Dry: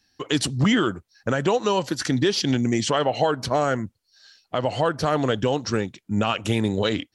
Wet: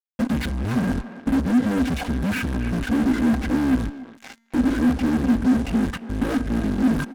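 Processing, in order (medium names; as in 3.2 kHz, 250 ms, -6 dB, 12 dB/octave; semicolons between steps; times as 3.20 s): block-companded coder 5-bit; de-esser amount 100%; treble shelf 2.1 kHz -5 dB; comb 2 ms, depth 64%; reverse; compression 6:1, threshold -29 dBFS, peak gain reduction 12 dB; reverse; pitch shift -12 st; fuzz box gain 47 dB, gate -51 dBFS; feedback comb 230 Hz, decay 1.4 s, mix 40%; small resonant body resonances 250/1600 Hz, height 12 dB, ringing for 55 ms; speakerphone echo 280 ms, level -11 dB; trim -7 dB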